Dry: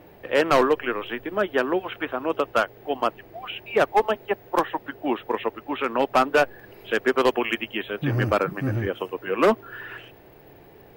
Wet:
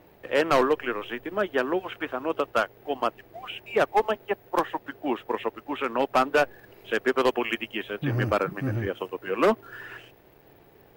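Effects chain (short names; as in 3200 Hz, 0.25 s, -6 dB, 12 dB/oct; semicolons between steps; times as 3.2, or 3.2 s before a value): crossover distortion -56.5 dBFS; gain -2.5 dB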